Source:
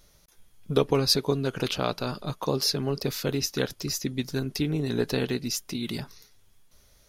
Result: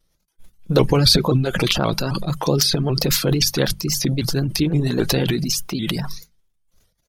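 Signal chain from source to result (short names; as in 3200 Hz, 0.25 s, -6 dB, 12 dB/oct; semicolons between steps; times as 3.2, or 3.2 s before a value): expander -45 dBFS; low shelf 250 Hz +6.5 dB; transient shaper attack -1 dB, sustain +11 dB; reverb removal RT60 0.77 s; notches 50/100/150/200 Hz; comb 5.9 ms, depth 31%; shaped vibrato saw up 3.8 Hz, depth 160 cents; gain +6 dB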